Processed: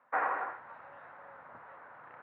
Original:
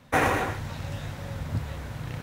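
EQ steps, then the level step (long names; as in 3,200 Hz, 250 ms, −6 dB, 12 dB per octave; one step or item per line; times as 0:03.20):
high-pass filter 1,100 Hz 12 dB per octave
low-pass filter 1,400 Hz 24 dB per octave
0.0 dB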